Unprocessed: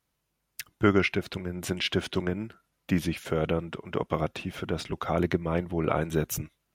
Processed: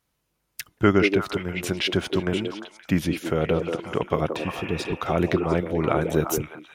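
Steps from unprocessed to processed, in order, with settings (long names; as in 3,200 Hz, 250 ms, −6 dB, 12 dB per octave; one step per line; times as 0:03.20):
healed spectral selection 0:04.41–0:04.90, 490–3,000 Hz before
echo through a band-pass that steps 175 ms, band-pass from 380 Hz, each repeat 1.4 octaves, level −2 dB
level +3.5 dB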